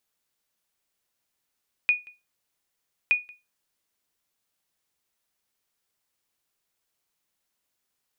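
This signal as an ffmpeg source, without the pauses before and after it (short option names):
-f lavfi -i "aevalsrc='0.224*(sin(2*PI*2460*mod(t,1.22))*exp(-6.91*mod(t,1.22)/0.23)+0.0531*sin(2*PI*2460*max(mod(t,1.22)-0.18,0))*exp(-6.91*max(mod(t,1.22)-0.18,0)/0.23))':d=2.44:s=44100"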